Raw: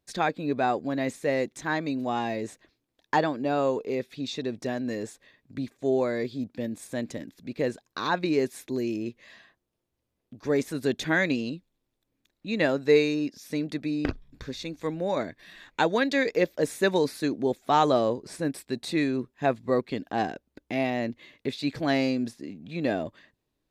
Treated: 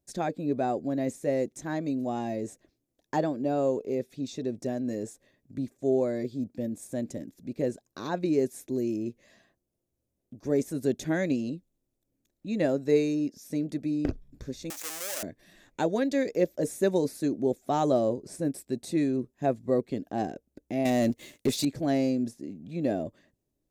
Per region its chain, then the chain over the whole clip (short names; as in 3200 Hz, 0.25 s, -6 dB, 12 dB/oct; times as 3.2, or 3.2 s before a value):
14.7–15.23 half-waves squared off + HPF 1400 Hz + fast leveller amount 70%
20.85–21.65 high shelf 3000 Hz +12 dB + sample leveller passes 2
whole clip: band shelf 2000 Hz -11 dB 2.7 oct; notch 460 Hz, Q 13